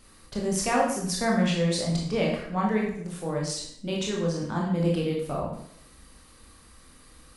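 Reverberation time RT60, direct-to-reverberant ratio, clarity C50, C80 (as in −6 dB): 0.70 s, −2.5 dB, 3.0 dB, 7.0 dB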